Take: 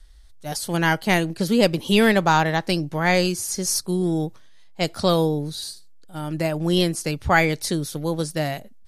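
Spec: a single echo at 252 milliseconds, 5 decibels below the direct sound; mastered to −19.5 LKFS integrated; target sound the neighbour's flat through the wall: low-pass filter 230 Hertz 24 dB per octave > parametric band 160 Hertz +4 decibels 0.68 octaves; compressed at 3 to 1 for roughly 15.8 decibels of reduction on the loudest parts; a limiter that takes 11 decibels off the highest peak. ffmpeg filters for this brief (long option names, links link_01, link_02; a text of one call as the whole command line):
ffmpeg -i in.wav -af "acompressor=threshold=-35dB:ratio=3,alimiter=level_in=7.5dB:limit=-24dB:level=0:latency=1,volume=-7.5dB,lowpass=frequency=230:width=0.5412,lowpass=frequency=230:width=1.3066,equalizer=frequency=160:width_type=o:width=0.68:gain=4,aecho=1:1:252:0.562,volume=22dB" out.wav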